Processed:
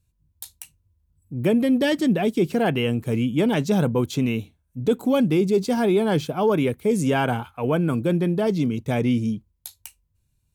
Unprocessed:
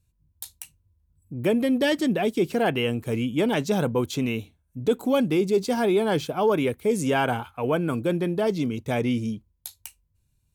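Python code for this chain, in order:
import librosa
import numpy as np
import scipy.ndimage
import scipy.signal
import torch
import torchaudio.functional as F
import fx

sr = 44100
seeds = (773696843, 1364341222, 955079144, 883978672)

y = fx.dynamic_eq(x, sr, hz=160.0, q=0.89, threshold_db=-38.0, ratio=4.0, max_db=6)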